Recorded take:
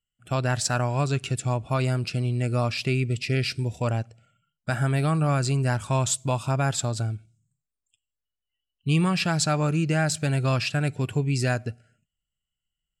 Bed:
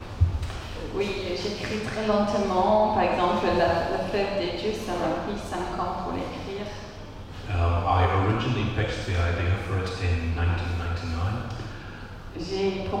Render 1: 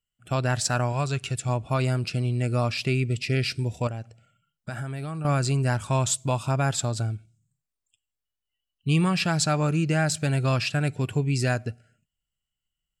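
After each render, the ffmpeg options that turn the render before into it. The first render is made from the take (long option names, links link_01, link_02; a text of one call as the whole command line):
ffmpeg -i in.wav -filter_complex "[0:a]asettb=1/sr,asplit=3[link_01][link_02][link_03];[link_01]atrim=end=0.924[link_04];[link_02]atrim=start=0.92:end=1.49,asetpts=PTS-STARTPTS,afade=type=in:duration=0.004:curve=qsin,afade=type=out:start_time=0.566:duration=0.004:curve=qsin,equalizer=frequency=270:width_type=o:width=1.5:gain=-6[link_05];[link_03]atrim=start=1.486[link_06];[link_04][link_05]acrossfade=duration=0.004:curve1=hsin:curve2=qsin[link_07];[link_07][link_06]acrossfade=duration=0.004:curve1=qsin:curve2=hsin,asettb=1/sr,asplit=3[link_08][link_09][link_10];[link_08]atrim=end=3.874[link_11];[link_09]atrim=start=3.87:end=5.25,asetpts=PTS-STARTPTS,afade=type=in:duration=0.004:curve=qsin,afade=type=out:start_time=1.376:duration=0.004:curve=qsin,acompressor=threshold=-29dB:ratio=6:attack=3.2:release=140:knee=1:detection=peak[link_12];[link_10]atrim=start=5.246[link_13];[link_11][link_12]acrossfade=duration=0.004:curve1=hsin:curve2=qsin[link_14];[link_14][link_13]acrossfade=duration=0.004:curve1=qsin:curve2=hsin" out.wav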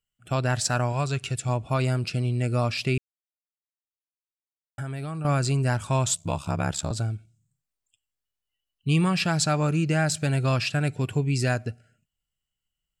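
ffmpeg -i in.wav -filter_complex "[0:a]asettb=1/sr,asplit=3[link_01][link_02][link_03];[link_01]atrim=end=6.144[link_04];[link_02]atrim=start=6.14:end=6.91,asetpts=PTS-STARTPTS,afade=type=in:duration=0.004:curve=qsin,afade=type=out:start_time=0.766:duration=0.004:curve=qsin,aeval=exprs='val(0)*sin(2*PI*35*n/s)':channel_layout=same[link_05];[link_03]atrim=start=6.906[link_06];[link_04][link_05]acrossfade=duration=0.004:curve1=hsin:curve2=qsin[link_07];[link_07][link_06]acrossfade=duration=0.004:curve1=qsin:curve2=hsin,asplit=3[link_08][link_09][link_10];[link_08]atrim=end=2.98,asetpts=PTS-STARTPTS,afade=type=out:start_time=2.976:duration=0.004:curve=hsin[link_11];[link_09]atrim=start=2.98:end=4.78,asetpts=PTS-STARTPTS,volume=0[link_12];[link_10]atrim=start=4.78,asetpts=PTS-STARTPTS,afade=type=in:duration=0.004:curve=hsin[link_13];[link_11][link_12][link_13]concat=n=3:v=0:a=1" out.wav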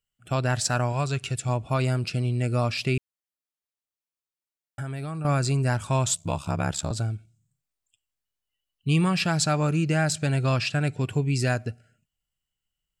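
ffmpeg -i in.wav -filter_complex "[0:a]asettb=1/sr,asplit=3[link_01][link_02][link_03];[link_01]atrim=end=5.004[link_04];[link_02]atrim=start=5:end=5.71,asetpts=PTS-STARTPTS,afade=type=in:duration=0.004:curve=qsin,afade=type=out:start_time=0.706:duration=0.004:curve=qsin,bandreject=frequency=3000:width=12[link_05];[link_03]atrim=start=5.706[link_06];[link_04][link_05]acrossfade=duration=0.004:curve1=hsin:curve2=qsin[link_07];[link_07][link_06]acrossfade=duration=0.004:curve1=qsin:curve2=hsin,asettb=1/sr,asplit=3[link_08][link_09][link_10];[link_08]atrim=end=10.134[link_11];[link_09]atrim=start=10.13:end=11.1,asetpts=PTS-STARTPTS,afade=type=in:duration=0.004:curve=qsin,afade=type=out:start_time=0.966:duration=0.004:curve=qsin,lowpass=9700[link_12];[link_10]atrim=start=11.096[link_13];[link_11][link_12]acrossfade=duration=0.004:curve1=hsin:curve2=qsin[link_14];[link_14][link_13]acrossfade=duration=0.004:curve1=qsin:curve2=hsin" out.wav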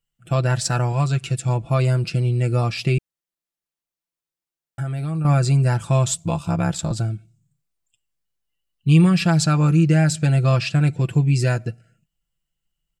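ffmpeg -i in.wav -af "lowshelf=frequency=390:gain=6,aecho=1:1:5.9:0.61" out.wav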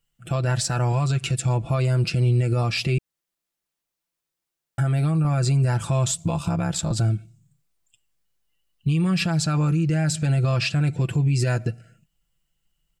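ffmpeg -i in.wav -filter_complex "[0:a]asplit=2[link_01][link_02];[link_02]acompressor=threshold=-25dB:ratio=6,volume=-0.5dB[link_03];[link_01][link_03]amix=inputs=2:normalize=0,alimiter=limit=-14.5dB:level=0:latency=1:release=76" out.wav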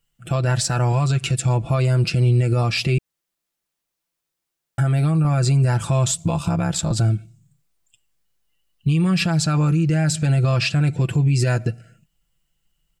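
ffmpeg -i in.wav -af "volume=3dB" out.wav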